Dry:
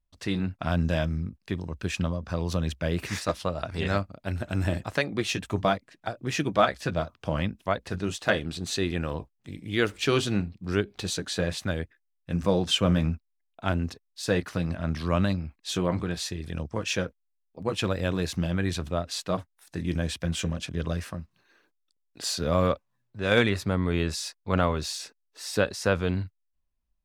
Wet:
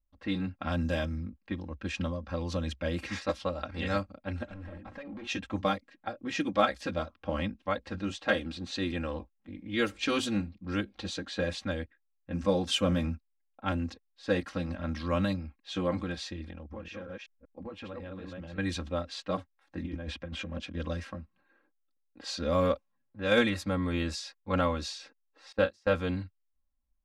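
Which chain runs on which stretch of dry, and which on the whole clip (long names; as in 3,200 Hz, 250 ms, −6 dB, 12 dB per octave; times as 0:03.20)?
0:04.48–0:05.27: mains-hum notches 60/120/180/240/300/360 Hz + downward compressor 4 to 1, threshold −32 dBFS + hard clipping −35 dBFS
0:16.50–0:18.58: delay that plays each chunk backwards 190 ms, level −2.5 dB + downward compressor 5 to 1, threshold −34 dBFS
0:19.83–0:20.60: high-shelf EQ 3,400 Hz −8 dB + compressor whose output falls as the input rises −32 dBFS
0:25.52–0:25.95: noise gate −27 dBFS, range −24 dB + double-tracking delay 32 ms −10 dB
whole clip: low-pass that shuts in the quiet parts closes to 1,500 Hz, open at −20.5 dBFS; comb filter 3.7 ms, depth 99%; level −6 dB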